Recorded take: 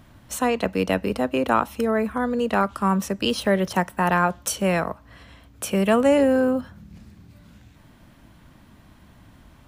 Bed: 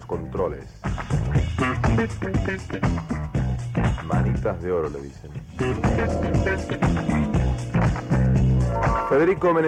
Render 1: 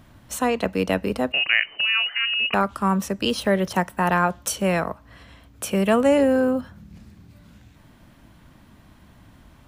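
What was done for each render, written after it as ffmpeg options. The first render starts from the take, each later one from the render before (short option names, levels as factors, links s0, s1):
-filter_complex "[0:a]asettb=1/sr,asplit=3[s0][s1][s2];[s0]atrim=end=1.324[s3];[s1]atrim=start=1.32:end=2.54,asetpts=PTS-STARTPTS,afade=t=in:d=0.004:c=qsin,afade=t=out:st=1.216:d=0.004:c=qsin,lowpass=f=2600:t=q:w=0.5098,lowpass=f=2600:t=q:w=0.6013,lowpass=f=2600:t=q:w=0.9,lowpass=f=2600:t=q:w=2.563,afreqshift=-3100[s4];[s2]atrim=start=2.536[s5];[s3][s4]acrossfade=d=0.004:c1=hsin:c2=qsin[s6];[s6][s5]acrossfade=d=0.004:c1=qsin:c2=hsin"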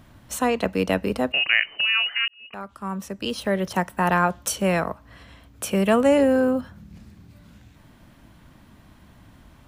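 -filter_complex "[0:a]asplit=2[s0][s1];[s0]atrim=end=2.28,asetpts=PTS-STARTPTS,afade=t=out:st=2.276:d=0.004:c=hsin[s2];[s1]atrim=start=2.28,asetpts=PTS-STARTPTS,afade=t=in:d=1.78[s3];[s2][s3]concat=n=2:v=0:a=1"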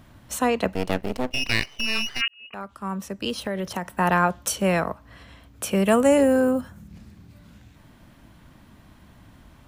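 -filter_complex "[0:a]asplit=3[s0][s1][s2];[s0]afade=t=out:st=0.73:d=0.02[s3];[s1]aeval=exprs='max(val(0),0)':c=same,afade=t=in:st=0.73:d=0.02,afade=t=out:st=2.2:d=0.02[s4];[s2]afade=t=in:st=2.2:d=0.02[s5];[s3][s4][s5]amix=inputs=3:normalize=0,asettb=1/sr,asplit=3[s6][s7][s8];[s6]atrim=end=3.304[s9];[s7]atrim=start=3.3:end=3.95,asetpts=PTS-STARTPTS,afade=t=in:d=0.004:c=qsin,afade=t=out:st=0.646:d=0.004:c=qsin,acompressor=threshold=0.0708:ratio=6:attack=3.2:release=140:knee=1:detection=peak[s10];[s8]atrim=start=3.946[s11];[s9][s10]acrossfade=d=0.004:c1=hsin:c2=qsin[s12];[s12][s11]acrossfade=d=0.004:c1=qsin:c2=hsin,asettb=1/sr,asplit=3[s13][s14][s15];[s13]atrim=end=5.874[s16];[s14]atrim=start=5.87:end=6.88,asetpts=PTS-STARTPTS,afade=t=in:d=0.004:c=qsin,afade=t=out:st=1.006:d=0.004:c=qsin,highshelf=f=6000:t=q:w=1.5:g=6.5[s17];[s15]atrim=start=6.876[s18];[s16][s17]acrossfade=d=0.004:c1=hsin:c2=qsin[s19];[s19][s18]acrossfade=d=0.004:c1=qsin:c2=hsin"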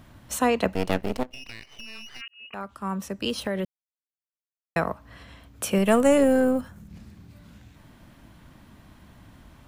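-filter_complex "[0:a]asettb=1/sr,asplit=3[s0][s1][s2];[s0]atrim=end=1.234[s3];[s1]atrim=start=1.23:end=2.51,asetpts=PTS-STARTPTS,afade=t=in:d=0.004:c=qsin,afade=t=out:st=1.276:d=0.004:c=qsin,acompressor=threshold=0.0112:ratio=4:attack=3.2:release=140:knee=1:detection=peak[s4];[s2]atrim=start=2.506[s5];[s3][s4]acrossfade=d=0.004:c1=hsin:c2=qsin[s6];[s6][s5]acrossfade=d=0.004:c1=qsin:c2=hsin,asettb=1/sr,asplit=3[s7][s8][s9];[s7]atrim=end=5.784[s10];[s8]atrim=start=5.78:end=6.9,asetpts=PTS-STARTPTS,afade=t=in:d=0.004:c=qsin,afade=t=out:st=1.116:d=0.004:c=qsin,aeval=exprs='if(lt(val(0),0),0.708*val(0),val(0))':c=same[s11];[s9]atrim=start=6.896[s12];[s10][s11]acrossfade=d=0.004:c1=hsin:c2=qsin[s13];[s13][s12]acrossfade=d=0.004:c1=qsin:c2=hsin,asplit=3[s14][s15][s16];[s14]atrim=end=3.65,asetpts=PTS-STARTPTS,afade=t=out:st=3.646:d=0.004:c=hsin[s17];[s15]atrim=start=3.65:end=4.76,asetpts=PTS-STARTPTS,volume=0[s18];[s16]atrim=start=4.76,asetpts=PTS-STARTPTS,afade=t=in:d=0.004:c=hsin[s19];[s17][s18][s19]concat=n=3:v=0:a=1"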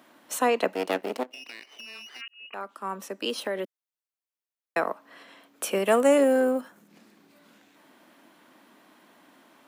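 -af "highpass=f=280:w=0.5412,highpass=f=280:w=1.3066,equalizer=f=5900:t=o:w=1.6:g=-2"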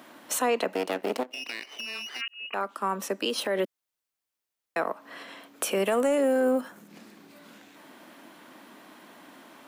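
-af "acontrast=69,alimiter=limit=0.133:level=0:latency=1:release=157"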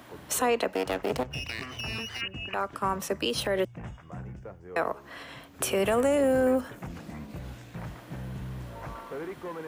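-filter_complex "[1:a]volume=0.112[s0];[0:a][s0]amix=inputs=2:normalize=0"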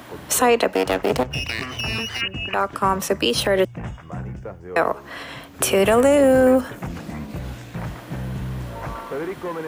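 -af "volume=2.82"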